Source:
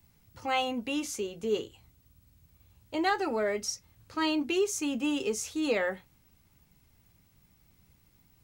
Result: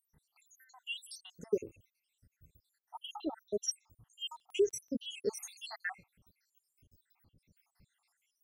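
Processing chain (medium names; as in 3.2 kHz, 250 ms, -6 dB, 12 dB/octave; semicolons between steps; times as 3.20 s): random holes in the spectrogram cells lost 84%; 4.31–4.98 s: crackle 15 per s -51 dBFS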